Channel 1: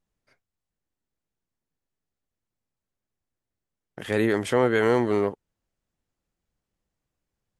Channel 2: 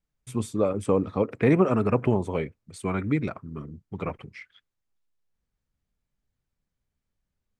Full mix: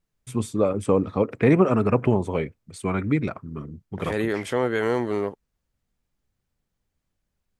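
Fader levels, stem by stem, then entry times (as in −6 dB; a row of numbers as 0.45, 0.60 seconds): −2.5, +2.5 decibels; 0.00, 0.00 seconds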